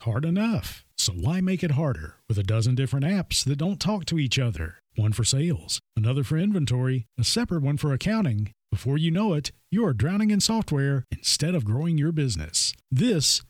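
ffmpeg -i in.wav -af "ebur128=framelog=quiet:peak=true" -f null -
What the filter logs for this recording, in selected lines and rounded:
Integrated loudness:
  I:         -24.9 LUFS
  Threshold: -34.9 LUFS
Loudness range:
  LRA:         1.5 LU
  Threshold: -44.9 LUFS
  LRA low:   -25.5 LUFS
  LRA high:  -23.9 LUFS
True peak:
  Peak:       -8.6 dBFS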